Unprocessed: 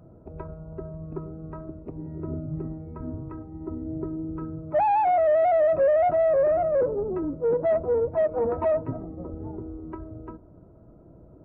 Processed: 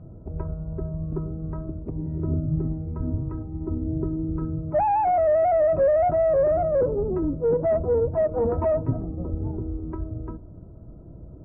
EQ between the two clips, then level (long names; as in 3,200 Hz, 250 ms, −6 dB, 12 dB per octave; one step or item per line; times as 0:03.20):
low-pass filter 2,000 Hz 12 dB per octave
low-shelf EQ 170 Hz +10 dB
low-shelf EQ 370 Hz +3.5 dB
−1.0 dB